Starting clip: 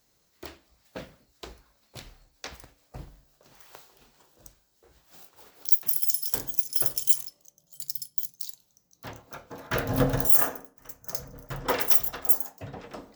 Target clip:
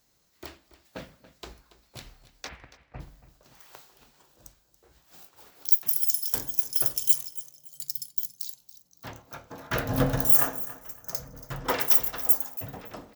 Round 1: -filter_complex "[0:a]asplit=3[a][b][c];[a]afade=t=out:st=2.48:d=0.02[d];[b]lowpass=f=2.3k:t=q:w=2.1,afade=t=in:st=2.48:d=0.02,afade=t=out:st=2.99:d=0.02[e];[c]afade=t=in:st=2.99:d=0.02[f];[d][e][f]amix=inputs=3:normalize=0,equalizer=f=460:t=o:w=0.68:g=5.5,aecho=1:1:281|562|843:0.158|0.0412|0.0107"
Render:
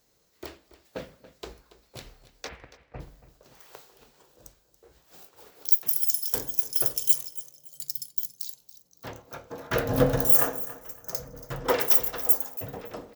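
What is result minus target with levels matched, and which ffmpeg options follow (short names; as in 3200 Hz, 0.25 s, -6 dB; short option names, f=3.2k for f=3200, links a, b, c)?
500 Hz band +6.0 dB
-filter_complex "[0:a]asplit=3[a][b][c];[a]afade=t=out:st=2.48:d=0.02[d];[b]lowpass=f=2.3k:t=q:w=2.1,afade=t=in:st=2.48:d=0.02,afade=t=out:st=2.99:d=0.02[e];[c]afade=t=in:st=2.99:d=0.02[f];[d][e][f]amix=inputs=3:normalize=0,equalizer=f=460:t=o:w=0.68:g=-2.5,aecho=1:1:281|562|843:0.158|0.0412|0.0107"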